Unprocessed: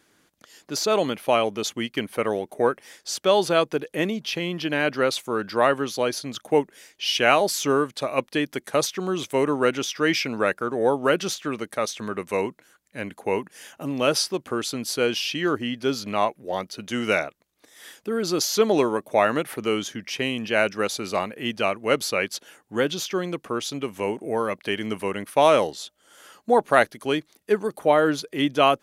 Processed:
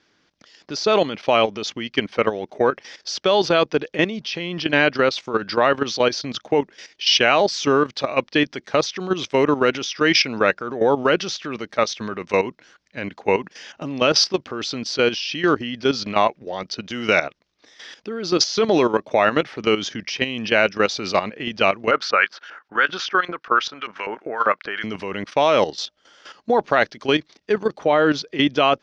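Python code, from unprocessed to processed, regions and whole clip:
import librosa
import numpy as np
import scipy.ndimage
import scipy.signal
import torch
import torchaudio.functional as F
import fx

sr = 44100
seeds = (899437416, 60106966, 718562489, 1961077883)

y = fx.chain(x, sr, fx.peak_eq(hz=1400.0, db=13.5, octaves=0.76),
    fx.filter_lfo_bandpass(shape='saw_up', hz=5.1, low_hz=510.0, high_hz=3800.0, q=0.73), at=(21.91, 24.84))
y = scipy.signal.sosfilt(scipy.signal.ellip(4, 1.0, 70, 5500.0, 'lowpass', fs=sr, output='sos'), y)
y = fx.high_shelf(y, sr, hz=4100.0, db=6.5)
y = fx.level_steps(y, sr, step_db=12)
y = y * 10.0 ** (8.5 / 20.0)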